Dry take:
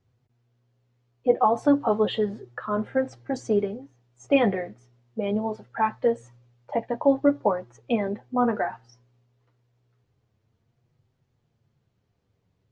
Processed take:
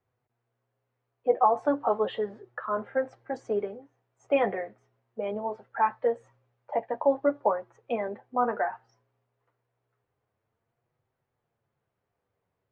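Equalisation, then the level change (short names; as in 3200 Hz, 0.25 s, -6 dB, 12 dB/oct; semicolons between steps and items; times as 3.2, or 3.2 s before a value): three-band isolator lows -14 dB, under 430 Hz, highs -16 dB, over 2300 Hz; 0.0 dB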